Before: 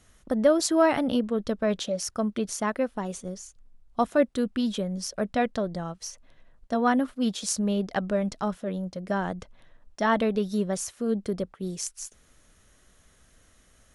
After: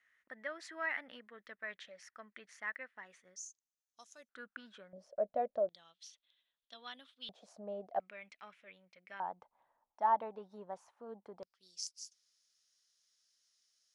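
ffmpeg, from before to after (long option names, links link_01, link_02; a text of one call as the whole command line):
ffmpeg -i in.wav -af "asetnsamples=nb_out_samples=441:pad=0,asendcmd='3.36 bandpass f 6300;4.29 bandpass f 1500;4.93 bandpass f 610;5.69 bandpass f 3500;7.29 bandpass f 690;8 bandpass f 2300;9.2 bandpass f 880;11.43 bandpass f 5000',bandpass=frequency=1900:width_type=q:width=6.5:csg=0" out.wav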